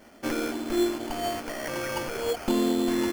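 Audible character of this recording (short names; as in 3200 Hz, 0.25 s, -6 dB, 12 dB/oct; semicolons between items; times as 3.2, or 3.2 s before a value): aliases and images of a low sample rate 3800 Hz, jitter 0%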